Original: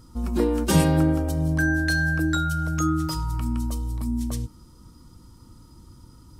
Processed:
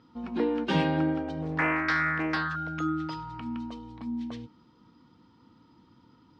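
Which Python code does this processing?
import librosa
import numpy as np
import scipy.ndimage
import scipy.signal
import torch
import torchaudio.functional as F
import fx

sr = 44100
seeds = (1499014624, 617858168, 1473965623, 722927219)

y = fx.cabinet(x, sr, low_hz=260.0, low_slope=12, high_hz=3500.0, hz=(360.0, 580.0, 1200.0), db=(-6, -7, -6))
y = fx.doppler_dist(y, sr, depth_ms=0.51, at=(1.42, 2.56))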